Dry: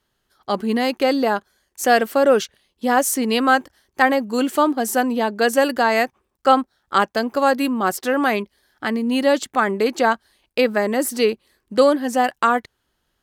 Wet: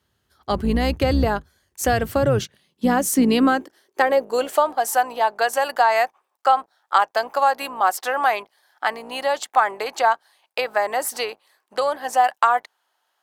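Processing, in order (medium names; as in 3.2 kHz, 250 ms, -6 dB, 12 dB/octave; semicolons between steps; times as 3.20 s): octave divider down 2 oct, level 0 dB; compression, threshold -16 dBFS, peak gain reduction 8 dB; high-pass sweep 78 Hz -> 790 Hz, 1.82–4.80 s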